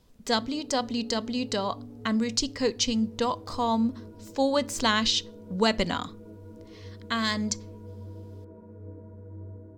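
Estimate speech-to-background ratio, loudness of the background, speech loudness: 18.0 dB, −45.5 LKFS, −27.5 LKFS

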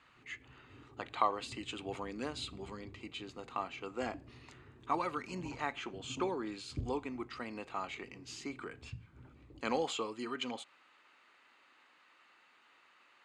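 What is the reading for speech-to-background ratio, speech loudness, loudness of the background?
14.0 dB, −40.0 LKFS, −54.0 LKFS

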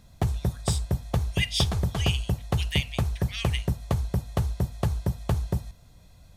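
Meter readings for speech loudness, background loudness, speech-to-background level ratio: −32.5 LKFS, −29.0 LKFS, −3.5 dB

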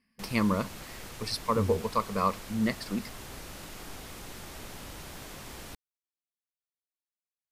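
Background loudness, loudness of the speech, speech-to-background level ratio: −43.5 LKFS, −30.5 LKFS, 13.0 dB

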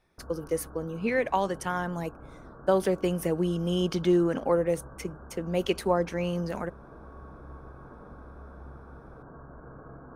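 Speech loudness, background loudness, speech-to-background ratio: −28.5 LKFS, −48.0 LKFS, 19.5 dB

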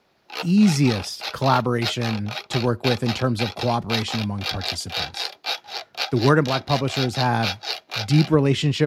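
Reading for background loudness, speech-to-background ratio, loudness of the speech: −29.0 LKFS, 6.5 dB, −22.5 LKFS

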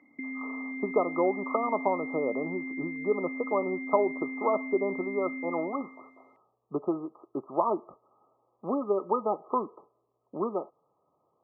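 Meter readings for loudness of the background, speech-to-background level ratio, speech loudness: −36.5 LKFS, 5.5 dB, −31.0 LKFS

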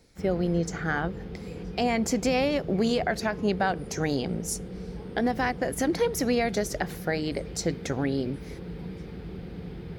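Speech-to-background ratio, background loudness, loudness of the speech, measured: 10.5 dB, −39.0 LKFS, −28.5 LKFS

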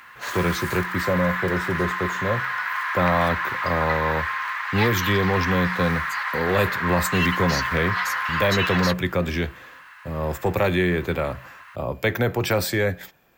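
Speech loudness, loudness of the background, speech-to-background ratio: −24.5 LKFS, −25.5 LKFS, 1.0 dB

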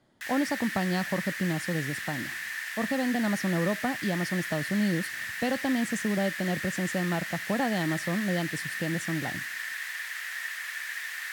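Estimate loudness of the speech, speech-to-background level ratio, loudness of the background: −30.5 LKFS, 3.5 dB, −34.0 LKFS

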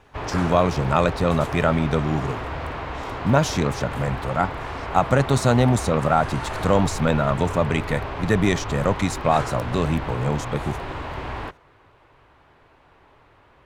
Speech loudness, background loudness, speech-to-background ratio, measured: −22.5 LKFS, −31.0 LKFS, 8.5 dB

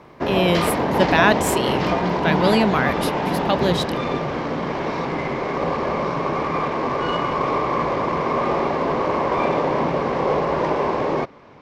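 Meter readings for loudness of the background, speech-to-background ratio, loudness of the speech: −22.0 LKFS, 0.0 dB, −22.0 LKFS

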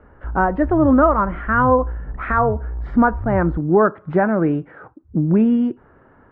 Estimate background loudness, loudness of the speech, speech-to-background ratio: −29.5 LKFS, −18.0 LKFS, 11.5 dB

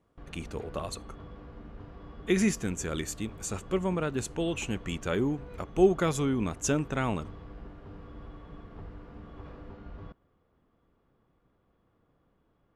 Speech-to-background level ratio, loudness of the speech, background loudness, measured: 17.0 dB, −30.5 LKFS, −47.5 LKFS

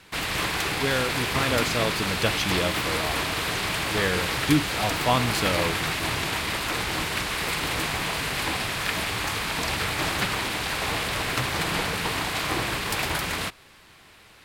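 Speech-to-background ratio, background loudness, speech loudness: −1.5 dB, −26.0 LKFS, −27.5 LKFS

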